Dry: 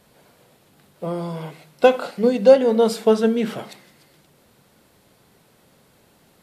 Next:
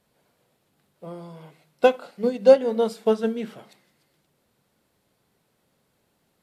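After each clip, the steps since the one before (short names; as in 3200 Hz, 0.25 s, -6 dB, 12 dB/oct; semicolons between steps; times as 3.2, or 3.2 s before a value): upward expander 1.5:1, over -29 dBFS; gain -1.5 dB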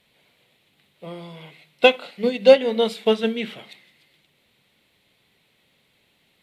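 band shelf 2800 Hz +12.5 dB 1.3 oct; gain +1.5 dB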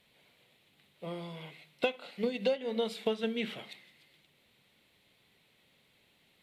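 compressor 6:1, threshold -24 dBFS, peak gain reduction 16.5 dB; gain -4 dB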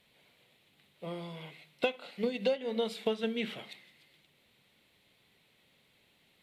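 nothing audible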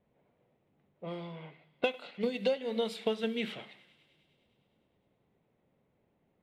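low-pass opened by the level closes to 770 Hz, open at -31 dBFS; thinning echo 0.102 s, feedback 80%, high-pass 820 Hz, level -21 dB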